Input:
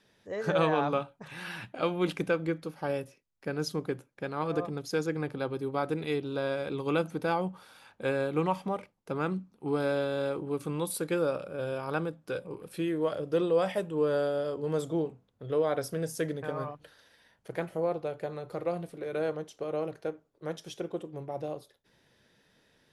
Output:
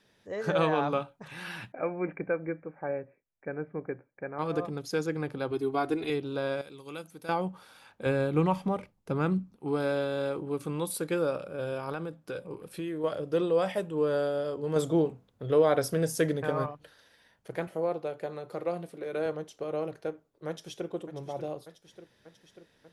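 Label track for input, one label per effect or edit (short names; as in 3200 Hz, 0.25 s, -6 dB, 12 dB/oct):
1.720000	4.390000	rippled Chebyshev low-pass 2400 Hz, ripple 6 dB
5.510000	6.100000	comb 2.8 ms, depth 85%
6.610000	7.290000	pre-emphasis coefficient 0.8
8.060000	9.560000	low shelf 170 Hz +12 dB
11.920000	13.040000	compressor 3:1, threshold -32 dBFS
14.760000	16.660000	gain +5 dB
17.670000	19.260000	HPF 160 Hz
20.480000	20.890000	echo throw 0.59 s, feedback 70%, level -11 dB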